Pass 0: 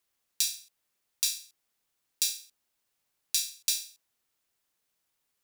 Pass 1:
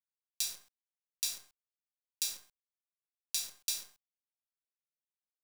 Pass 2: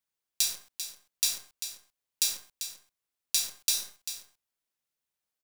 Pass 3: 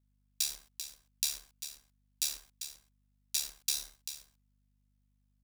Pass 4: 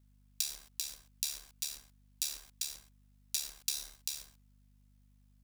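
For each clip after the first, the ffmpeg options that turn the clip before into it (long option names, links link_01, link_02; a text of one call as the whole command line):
ffmpeg -i in.wav -af "acrusher=bits=7:dc=4:mix=0:aa=0.000001,volume=-6.5dB" out.wav
ffmpeg -i in.wav -af "aecho=1:1:393:0.316,volume=7.5dB" out.wav
ffmpeg -i in.wav -af "aeval=exprs='val(0)*sin(2*PI*36*n/s)':channel_layout=same,aeval=exprs='val(0)+0.000316*(sin(2*PI*50*n/s)+sin(2*PI*2*50*n/s)/2+sin(2*PI*3*50*n/s)/3+sin(2*PI*4*50*n/s)/4+sin(2*PI*5*50*n/s)/5)':channel_layout=same,volume=-2.5dB" out.wav
ffmpeg -i in.wav -af "acompressor=threshold=-42dB:ratio=4,volume=8.5dB" out.wav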